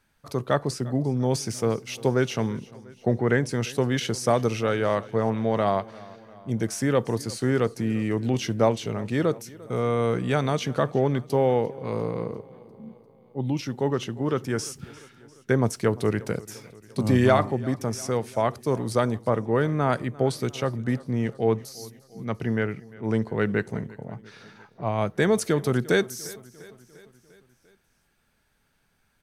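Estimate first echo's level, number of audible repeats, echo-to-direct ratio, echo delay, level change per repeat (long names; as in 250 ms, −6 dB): −21.0 dB, 4, −19.0 dB, 348 ms, −4.5 dB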